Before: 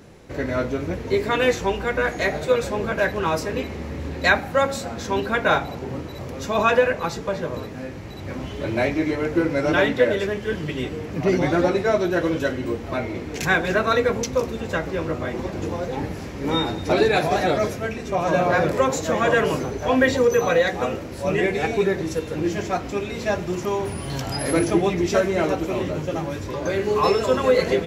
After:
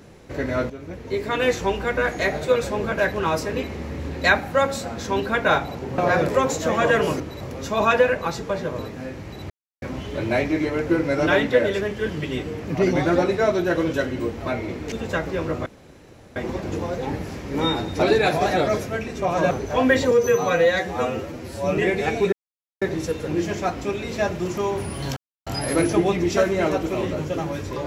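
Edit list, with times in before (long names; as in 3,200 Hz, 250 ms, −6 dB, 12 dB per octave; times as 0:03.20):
0:00.70–0:01.64: fade in, from −13 dB
0:08.28: splice in silence 0.32 s
0:13.38–0:14.52: remove
0:15.26: splice in room tone 0.70 s
0:18.41–0:19.63: move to 0:05.98
0:20.23–0:21.34: time-stretch 1.5×
0:21.89: splice in silence 0.49 s
0:24.24: splice in silence 0.30 s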